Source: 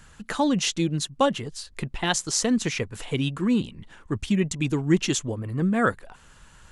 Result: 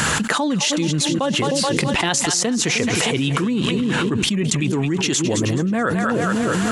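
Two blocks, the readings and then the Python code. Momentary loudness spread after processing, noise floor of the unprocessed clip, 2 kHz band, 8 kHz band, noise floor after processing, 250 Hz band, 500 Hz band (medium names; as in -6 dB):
2 LU, -52 dBFS, +9.0 dB, +8.5 dB, -22 dBFS, +5.5 dB, +6.0 dB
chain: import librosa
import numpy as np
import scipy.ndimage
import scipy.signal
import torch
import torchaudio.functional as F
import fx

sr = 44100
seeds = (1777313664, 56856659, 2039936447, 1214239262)

y = scipy.signal.sosfilt(scipy.signal.butter(2, 150.0, 'highpass', fs=sr, output='sos'), x)
y = fx.echo_split(y, sr, split_hz=550.0, low_ms=308, high_ms=214, feedback_pct=52, wet_db=-13)
y = fx.env_flatten(y, sr, amount_pct=100)
y = y * 10.0 ** (-4.0 / 20.0)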